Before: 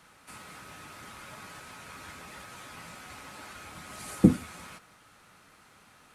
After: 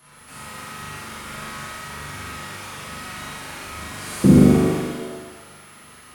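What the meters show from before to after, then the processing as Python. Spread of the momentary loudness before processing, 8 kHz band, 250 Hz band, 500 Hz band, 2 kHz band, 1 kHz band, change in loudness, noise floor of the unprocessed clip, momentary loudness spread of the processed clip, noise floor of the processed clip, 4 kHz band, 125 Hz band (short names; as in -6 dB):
22 LU, +11.5 dB, +11.5 dB, +14.5 dB, +12.0 dB, +12.0 dB, +11.0 dB, -59 dBFS, 20 LU, -46 dBFS, +12.5 dB, +12.0 dB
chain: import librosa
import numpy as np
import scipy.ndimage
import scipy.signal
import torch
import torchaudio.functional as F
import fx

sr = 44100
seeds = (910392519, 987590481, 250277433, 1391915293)

y = fx.room_flutter(x, sr, wall_m=7.0, rt60_s=0.92)
y = y + 10.0 ** (-54.0 / 20.0) * np.sin(2.0 * np.pi * 11000.0 * np.arange(len(y)) / sr)
y = fx.rev_shimmer(y, sr, seeds[0], rt60_s=1.3, semitones=7, shimmer_db=-8, drr_db=-7.5)
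y = y * 10.0 ** (-1.0 / 20.0)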